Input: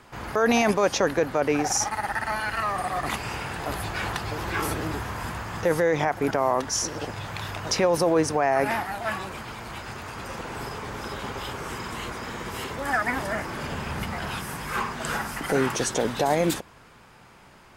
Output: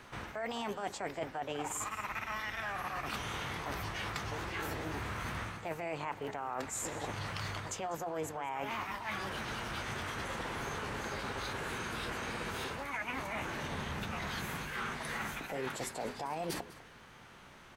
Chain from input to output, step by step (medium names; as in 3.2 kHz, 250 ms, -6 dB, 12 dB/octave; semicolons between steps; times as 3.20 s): treble shelf 9 kHz -9.5 dB; hum notches 60/120/180/240/300/360/420 Hz; in parallel at 0 dB: gain riding 0.5 s; on the sum: formant shift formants +4 st; reverse; compression 5:1, threshold -29 dBFS, peak gain reduction 15 dB; reverse; delay 199 ms -18 dB; trim -7.5 dB